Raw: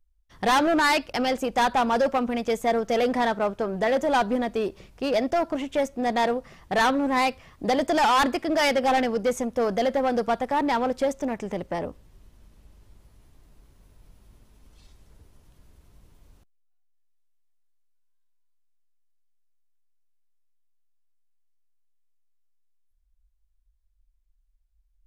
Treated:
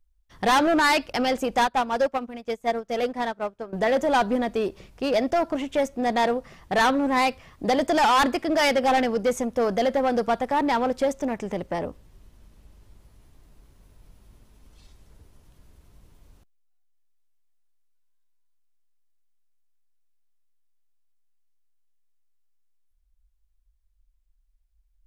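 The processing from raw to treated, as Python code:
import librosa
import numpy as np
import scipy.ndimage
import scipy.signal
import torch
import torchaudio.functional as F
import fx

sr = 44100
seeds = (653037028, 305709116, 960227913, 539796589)

y = fx.upward_expand(x, sr, threshold_db=-33.0, expansion=2.5, at=(1.64, 3.73))
y = y * librosa.db_to_amplitude(1.0)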